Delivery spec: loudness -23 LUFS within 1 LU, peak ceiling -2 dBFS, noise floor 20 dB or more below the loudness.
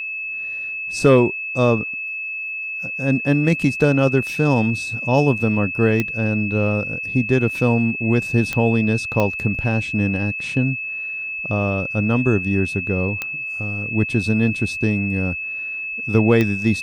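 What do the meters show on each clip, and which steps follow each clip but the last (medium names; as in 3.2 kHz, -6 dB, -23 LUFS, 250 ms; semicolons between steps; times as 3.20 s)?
clicks found 5; steady tone 2.6 kHz; tone level -25 dBFS; loudness -20.0 LUFS; peak level -3.0 dBFS; loudness target -23.0 LUFS
-> de-click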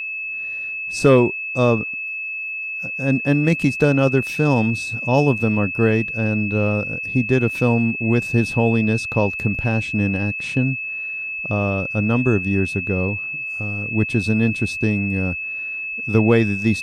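clicks found 0; steady tone 2.6 kHz; tone level -25 dBFS
-> band-stop 2.6 kHz, Q 30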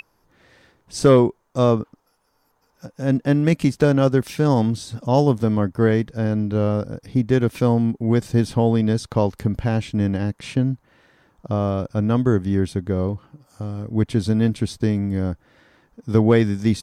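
steady tone not found; loudness -20.5 LUFS; peak level -3.5 dBFS; loudness target -23.0 LUFS
-> trim -2.5 dB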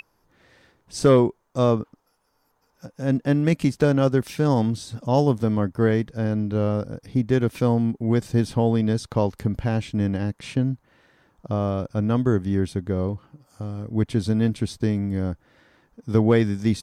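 loudness -23.0 LUFS; peak level -6.0 dBFS; noise floor -68 dBFS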